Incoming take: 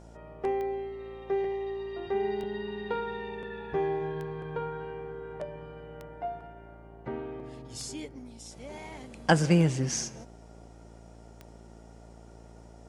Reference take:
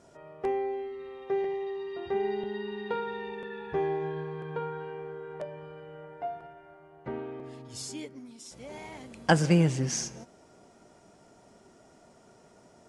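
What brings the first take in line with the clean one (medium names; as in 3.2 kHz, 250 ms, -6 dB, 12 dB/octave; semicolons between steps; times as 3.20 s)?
de-click; de-hum 56.5 Hz, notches 16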